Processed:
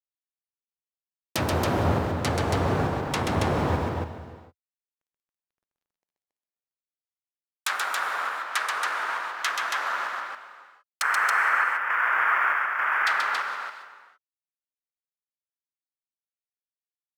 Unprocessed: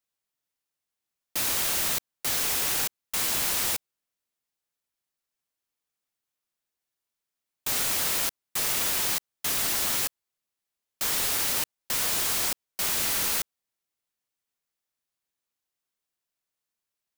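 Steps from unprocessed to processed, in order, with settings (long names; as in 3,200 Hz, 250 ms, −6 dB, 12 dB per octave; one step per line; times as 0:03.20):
adaptive Wiener filter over 25 samples
0:11.02–0:13.07: inverse Chebyshev low-pass filter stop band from 3,800 Hz, stop band 40 dB
treble cut that deepens with the level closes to 890 Hz, closed at −26.5 dBFS
in parallel at +1 dB: brickwall limiter −31 dBFS, peak gain reduction 8.5 dB
on the sum: high-pass filter sweep 86 Hz → 1,400 Hz, 0:04.61–0:06.81
log-companded quantiser 8 bits
on a send: loudspeakers that aren't time-aligned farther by 45 metres −4 dB, 95 metres −4 dB
on the sum: reverb whose tail is shaped and stops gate 490 ms flat, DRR 11 dB
level +6.5 dB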